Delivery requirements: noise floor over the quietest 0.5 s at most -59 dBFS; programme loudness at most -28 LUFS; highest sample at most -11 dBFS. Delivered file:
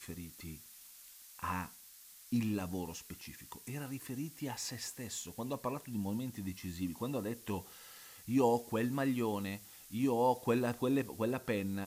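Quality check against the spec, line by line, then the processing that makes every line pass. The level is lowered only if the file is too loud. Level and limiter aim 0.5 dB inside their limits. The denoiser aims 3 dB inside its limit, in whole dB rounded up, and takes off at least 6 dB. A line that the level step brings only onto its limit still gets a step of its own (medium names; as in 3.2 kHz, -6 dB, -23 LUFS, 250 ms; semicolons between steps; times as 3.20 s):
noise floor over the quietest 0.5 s -57 dBFS: fail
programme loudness -37.0 LUFS: pass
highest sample -18.5 dBFS: pass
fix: noise reduction 6 dB, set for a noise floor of -57 dBFS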